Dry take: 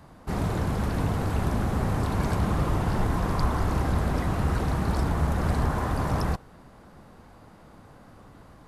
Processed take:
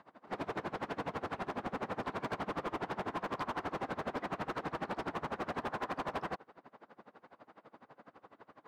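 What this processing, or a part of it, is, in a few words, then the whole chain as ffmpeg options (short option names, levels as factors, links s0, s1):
helicopter radio: -af "highpass=330,lowpass=2800,aeval=exprs='val(0)*pow(10,-25*(0.5-0.5*cos(2*PI*12*n/s))/20)':c=same,asoftclip=type=hard:threshold=0.02,volume=1.26"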